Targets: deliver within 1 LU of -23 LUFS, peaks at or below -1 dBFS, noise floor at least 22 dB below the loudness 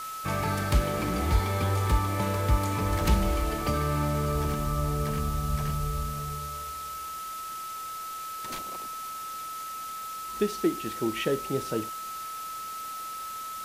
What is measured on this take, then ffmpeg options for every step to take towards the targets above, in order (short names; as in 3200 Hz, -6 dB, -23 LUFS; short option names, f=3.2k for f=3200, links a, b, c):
steady tone 1300 Hz; tone level -35 dBFS; noise floor -37 dBFS; noise floor target -52 dBFS; loudness -30.0 LUFS; peak -11.5 dBFS; loudness target -23.0 LUFS
-> -af "bandreject=f=1.3k:w=30"
-af "afftdn=nr=15:nf=-37"
-af "volume=7dB"